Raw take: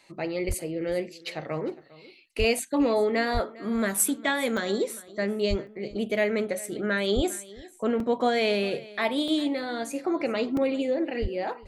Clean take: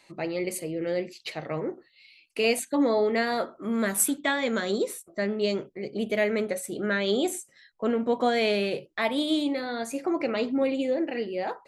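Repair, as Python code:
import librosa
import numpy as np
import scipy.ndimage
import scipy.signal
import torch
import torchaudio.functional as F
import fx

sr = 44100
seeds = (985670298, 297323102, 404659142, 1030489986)

y = fx.fix_declip(x, sr, threshold_db=-13.0)
y = fx.fix_deplosive(y, sr, at_s=(0.47, 2.38, 3.33, 5.49, 7.15, 11.21))
y = fx.fix_interpolate(y, sr, at_s=(0.52, 4.57, 5.67, 8.0, 9.28, 10.57), length_ms=2.7)
y = fx.fix_echo_inverse(y, sr, delay_ms=404, level_db=-20.5)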